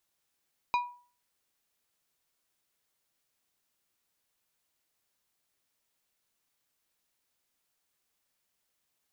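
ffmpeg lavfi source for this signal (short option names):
-f lavfi -i "aevalsrc='0.0794*pow(10,-3*t/0.42)*sin(2*PI*975*t)+0.0335*pow(10,-3*t/0.221)*sin(2*PI*2437.5*t)+0.0141*pow(10,-3*t/0.159)*sin(2*PI*3900*t)+0.00596*pow(10,-3*t/0.136)*sin(2*PI*4875*t)+0.00251*pow(10,-3*t/0.113)*sin(2*PI*6337.5*t)':d=0.89:s=44100"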